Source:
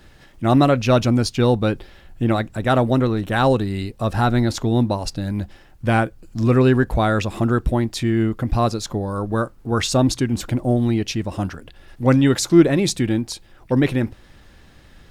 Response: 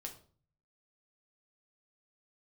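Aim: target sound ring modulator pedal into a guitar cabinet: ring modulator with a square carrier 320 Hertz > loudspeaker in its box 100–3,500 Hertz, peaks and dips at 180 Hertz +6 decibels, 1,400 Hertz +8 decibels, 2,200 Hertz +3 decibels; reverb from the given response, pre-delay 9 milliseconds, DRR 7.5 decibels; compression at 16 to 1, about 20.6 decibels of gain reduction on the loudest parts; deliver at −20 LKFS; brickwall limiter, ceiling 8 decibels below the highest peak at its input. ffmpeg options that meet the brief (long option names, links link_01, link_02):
-filter_complex "[0:a]acompressor=threshold=-27dB:ratio=16,alimiter=level_in=1dB:limit=-24dB:level=0:latency=1,volume=-1dB,asplit=2[link_01][link_02];[1:a]atrim=start_sample=2205,adelay=9[link_03];[link_02][link_03]afir=irnorm=-1:irlink=0,volume=-4dB[link_04];[link_01][link_04]amix=inputs=2:normalize=0,aeval=exprs='val(0)*sgn(sin(2*PI*320*n/s))':channel_layout=same,highpass=100,equalizer=frequency=180:width_type=q:width=4:gain=6,equalizer=frequency=1400:width_type=q:width=4:gain=8,equalizer=frequency=2200:width_type=q:width=4:gain=3,lowpass=frequency=3500:width=0.5412,lowpass=frequency=3500:width=1.3066,volume=11.5dB"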